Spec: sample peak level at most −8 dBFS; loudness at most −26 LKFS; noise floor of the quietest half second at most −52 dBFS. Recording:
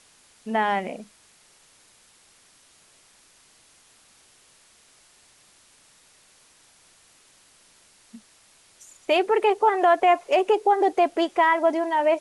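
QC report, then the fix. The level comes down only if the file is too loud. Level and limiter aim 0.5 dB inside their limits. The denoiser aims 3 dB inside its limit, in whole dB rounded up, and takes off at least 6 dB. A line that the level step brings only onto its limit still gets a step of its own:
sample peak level −9.0 dBFS: in spec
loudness −21.5 LKFS: out of spec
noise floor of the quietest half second −57 dBFS: in spec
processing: level −5 dB

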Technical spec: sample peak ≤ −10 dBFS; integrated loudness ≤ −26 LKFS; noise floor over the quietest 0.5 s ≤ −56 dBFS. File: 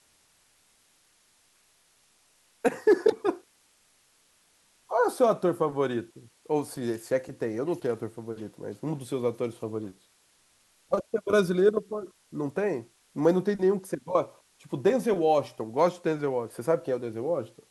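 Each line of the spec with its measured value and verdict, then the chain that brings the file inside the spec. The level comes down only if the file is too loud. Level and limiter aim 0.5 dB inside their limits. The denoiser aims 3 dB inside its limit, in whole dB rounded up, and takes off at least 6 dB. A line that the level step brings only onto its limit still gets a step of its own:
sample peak −9.5 dBFS: out of spec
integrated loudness −28.0 LKFS: in spec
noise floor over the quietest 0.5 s −65 dBFS: in spec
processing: brickwall limiter −10.5 dBFS

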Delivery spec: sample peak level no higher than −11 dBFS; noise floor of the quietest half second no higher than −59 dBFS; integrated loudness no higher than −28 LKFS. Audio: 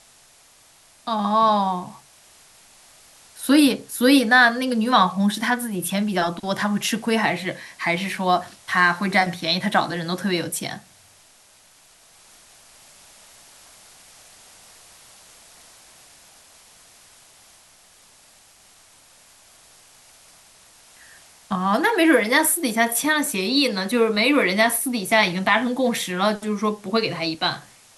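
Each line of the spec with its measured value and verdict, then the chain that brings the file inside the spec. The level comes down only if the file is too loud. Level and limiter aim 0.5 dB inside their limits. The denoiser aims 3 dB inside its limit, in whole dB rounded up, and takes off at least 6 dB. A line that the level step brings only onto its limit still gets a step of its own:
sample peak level −3.0 dBFS: out of spec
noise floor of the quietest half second −54 dBFS: out of spec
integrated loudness −20.5 LKFS: out of spec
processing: level −8 dB
brickwall limiter −11.5 dBFS

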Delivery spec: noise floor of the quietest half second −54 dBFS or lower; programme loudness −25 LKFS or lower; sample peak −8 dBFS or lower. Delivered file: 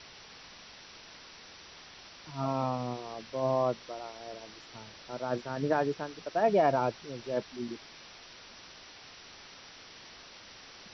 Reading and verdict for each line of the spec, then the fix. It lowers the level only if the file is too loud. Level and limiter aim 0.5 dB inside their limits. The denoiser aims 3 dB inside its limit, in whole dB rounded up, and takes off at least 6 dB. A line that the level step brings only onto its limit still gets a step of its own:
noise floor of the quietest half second −51 dBFS: out of spec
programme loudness −32.5 LKFS: in spec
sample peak −15.0 dBFS: in spec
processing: broadband denoise 6 dB, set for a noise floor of −51 dBFS

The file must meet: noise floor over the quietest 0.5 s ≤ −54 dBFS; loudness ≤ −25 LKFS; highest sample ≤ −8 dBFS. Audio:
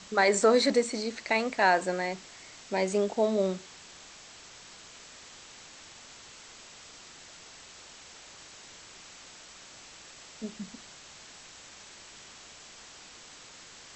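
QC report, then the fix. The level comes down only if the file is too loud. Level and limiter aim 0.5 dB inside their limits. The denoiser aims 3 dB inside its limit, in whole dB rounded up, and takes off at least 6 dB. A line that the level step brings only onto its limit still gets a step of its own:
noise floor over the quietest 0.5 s −50 dBFS: out of spec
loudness −27.5 LKFS: in spec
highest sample −11.5 dBFS: in spec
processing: broadband denoise 7 dB, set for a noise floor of −50 dBFS

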